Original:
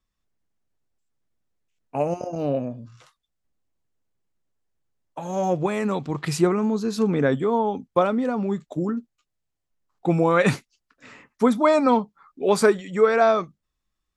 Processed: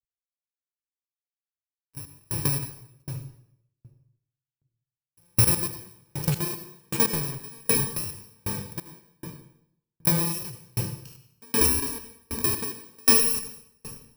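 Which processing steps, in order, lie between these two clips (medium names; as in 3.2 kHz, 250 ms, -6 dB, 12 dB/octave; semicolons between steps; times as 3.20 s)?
bit-reversed sample order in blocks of 64 samples; high-pass 42 Hz; resonant low shelf 150 Hz +10 dB, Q 3; gate with hold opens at -38 dBFS; level held to a coarse grid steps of 23 dB; waveshaping leveller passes 3; compression, threshold -19 dBFS, peak gain reduction 4 dB; reverberation RT60 1.6 s, pre-delay 74 ms, DRR 2 dB; loudness maximiser +9 dB; sawtooth tremolo in dB decaying 1.3 Hz, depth 38 dB; trim -3.5 dB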